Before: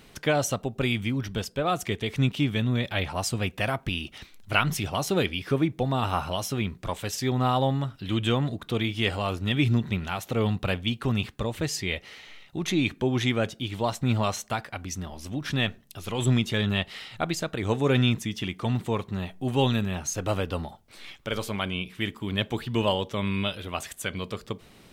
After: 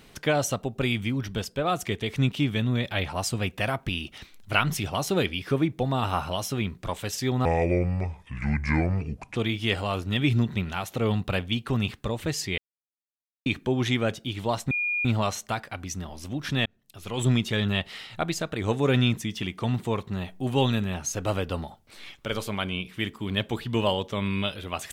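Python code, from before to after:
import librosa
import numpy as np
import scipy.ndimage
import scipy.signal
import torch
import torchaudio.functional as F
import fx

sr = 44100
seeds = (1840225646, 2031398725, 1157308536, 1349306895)

y = fx.edit(x, sr, fx.speed_span(start_s=7.45, length_s=1.26, speed=0.66),
    fx.silence(start_s=11.93, length_s=0.88),
    fx.insert_tone(at_s=14.06, length_s=0.34, hz=2430.0, db=-24.0),
    fx.fade_in_span(start_s=15.67, length_s=0.58), tone=tone)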